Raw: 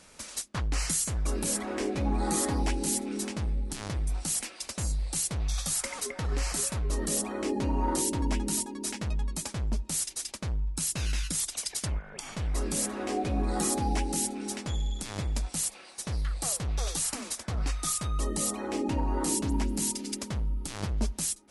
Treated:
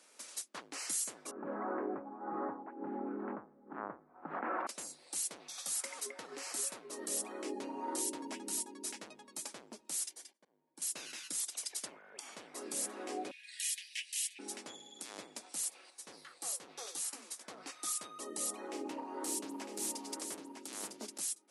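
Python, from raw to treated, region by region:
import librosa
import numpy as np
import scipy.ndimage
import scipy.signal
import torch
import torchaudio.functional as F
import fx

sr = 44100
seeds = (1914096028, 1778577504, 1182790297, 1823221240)

y = fx.chain(x, sr, fx.steep_lowpass(hz=1400.0, slope=36),
    fx.peak_eq(hz=400.0, db=-8.0, octaves=2.0),
    fx.env_flatten(amount_pct=100), at=(1.31, 4.67))
y = fx.chain(y, sr, fx.high_shelf(hz=2800.0, db=-10.0),
    fx.auto_swell(attack_ms=551.0),
    fx.notch_comb(f0_hz=1300.0), at=(10.11, 10.82))
y = fx.chain(y, sr, fx.steep_highpass(hz=1700.0, slope=96),
    fx.peak_eq(hz=2900.0, db=12.5, octaves=0.8), at=(13.31, 14.39))
y = fx.chain(y, sr, fx.notch(hz=630.0, q=11.0),
    fx.doubler(ms=18.0, db=-11.0),
    fx.upward_expand(threshold_db=-36.0, expansion=1.5), at=(15.9, 17.41))
y = fx.chain(y, sr, fx.hum_notches(base_hz=50, count=7),
    fx.echo_single(ms=954, db=-6.0),
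    fx.doppler_dist(depth_ms=0.21), at=(18.67, 21.18))
y = scipy.signal.sosfilt(scipy.signal.butter(4, 280.0, 'highpass', fs=sr, output='sos'), y)
y = fx.high_shelf(y, sr, hz=7900.0, db=4.5)
y = y * 10.0 ** (-9.0 / 20.0)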